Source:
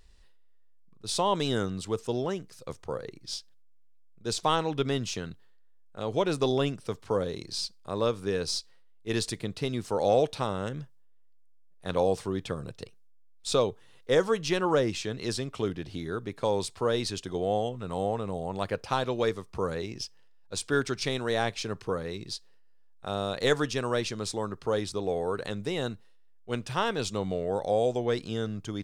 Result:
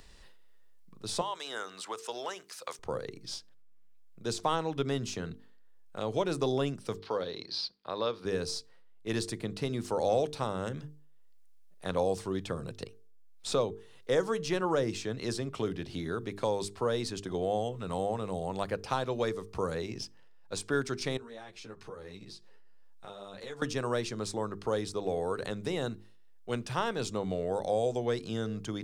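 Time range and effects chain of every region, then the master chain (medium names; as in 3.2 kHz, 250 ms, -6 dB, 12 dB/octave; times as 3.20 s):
1.21–2.79 s: high-pass 930 Hz + three bands compressed up and down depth 70%
6.99–8.25 s: high-pass 490 Hz 6 dB/octave + resonant high shelf 5.9 kHz -11 dB, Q 3
21.17–23.62 s: compression 2.5:1, threshold -49 dBFS + three-phase chorus
whole clip: hum notches 50/100/150/200/250/300/350/400/450 Hz; dynamic bell 3 kHz, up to -4 dB, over -44 dBFS, Q 1.1; three bands compressed up and down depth 40%; trim -2 dB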